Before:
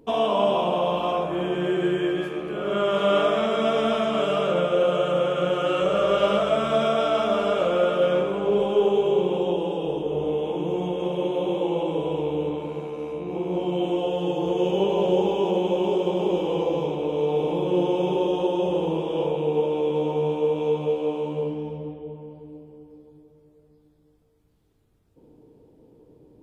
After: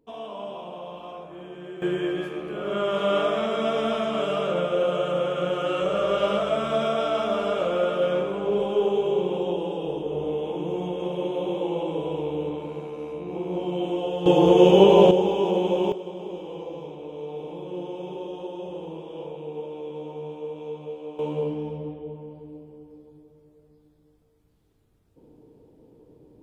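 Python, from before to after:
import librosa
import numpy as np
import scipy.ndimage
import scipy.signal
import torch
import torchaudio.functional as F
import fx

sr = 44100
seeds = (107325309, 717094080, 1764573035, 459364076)

y = fx.gain(x, sr, db=fx.steps((0.0, -14.5), (1.82, -2.5), (14.26, 8.5), (15.11, 0.0), (15.92, -11.5), (21.19, 0.0)))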